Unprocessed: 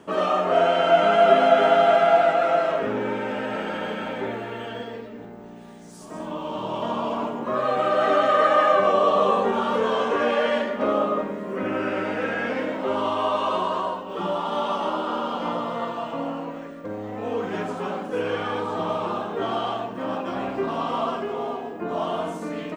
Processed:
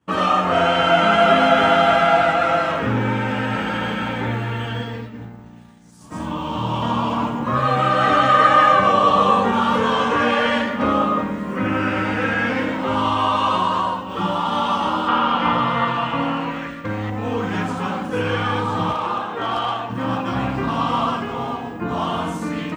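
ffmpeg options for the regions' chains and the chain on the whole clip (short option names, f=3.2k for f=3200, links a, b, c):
-filter_complex "[0:a]asettb=1/sr,asplit=3[a][b][c];[a]atrim=end=15.084[d];[b]atrim=start=15.08:end=17.1,asetpts=PTS-STARTPTS,afade=t=in:d=0.004:c=qsin,afade=t=out:st=2.016:d=0.004:c=qsin,equalizer=f=2.4k:w=0.65:g=10,acrossover=split=2600[e][f];[f]acompressor=threshold=-45dB:ratio=4:attack=1:release=60[g];[e][g]amix=inputs=2:normalize=0[h];[c]atrim=start=17.096[i];[d][h]acrossfade=d=0.004:c1=hsin:c2=qsin[j];[j][i]acrossfade=d=0.004:c1=qsin:c2=hsin,asettb=1/sr,asplit=3[k][l][m];[k]atrim=end=18.914[n];[l]atrim=start=18.91:end=19.9,asetpts=PTS-STARTPTS,afade=t=in:d=0.004:c=qsin,afade=t=out:st=0.986:d=0.004:c=qsin,bass=f=250:g=-14,treble=f=4k:g=-5,volume=19.5dB,asoftclip=hard,volume=-19.5dB[o];[m]atrim=start=19.896[p];[n][o]acrossfade=d=0.004:c1=hsin:c2=qsin[q];[q][p]acrossfade=d=0.004:c1=qsin:c2=hsin,equalizer=f=72:w=2.3:g=14.5,agate=range=-33dB:threshold=-34dB:ratio=3:detection=peak,equalizer=f=125:t=o:w=0.33:g=12,equalizer=f=400:t=o:w=0.33:g=-12,equalizer=f=630:t=o:w=0.33:g=-11,volume=7.5dB"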